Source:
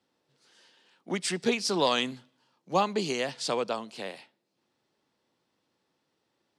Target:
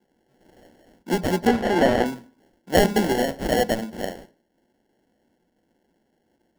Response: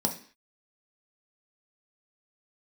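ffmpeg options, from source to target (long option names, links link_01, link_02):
-filter_complex "[0:a]acrusher=samples=36:mix=1:aa=0.000001,asettb=1/sr,asplit=3[link_01][link_02][link_03];[link_01]atrim=end=1.474[link_04];[link_02]atrim=start=1.47:end=2.06,asetpts=PTS-STARTPTS,afade=type=in:duration=0.004:curve=qsin,afade=type=out:start_time=0.586:duration=0.004:curve=qsin,asplit=2[link_05][link_06];[link_06]highpass=frequency=720:poles=1,volume=9dB,asoftclip=type=tanh:threshold=-13.5dB[link_07];[link_05][link_07]amix=inputs=2:normalize=0,lowpass=frequency=1800:poles=1,volume=-6dB[link_08];[link_03]atrim=start=2.056[link_09];[link_04][link_08]acrossfade=duration=0.004:curve1=hsin:curve2=qsin[link_10];[link_10][link_09]acrossfade=duration=0.004:curve1=qsin:curve2=hsin,asplit=2[link_11][link_12];[1:a]atrim=start_sample=2205,lowpass=4700[link_13];[link_12][link_13]afir=irnorm=-1:irlink=0,volume=-17.5dB[link_14];[link_11][link_14]amix=inputs=2:normalize=0,volume=6dB"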